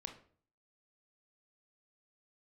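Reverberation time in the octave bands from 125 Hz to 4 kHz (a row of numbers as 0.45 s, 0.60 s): 0.65 s, 0.55 s, 0.50 s, 0.45 s, 0.40 s, 0.35 s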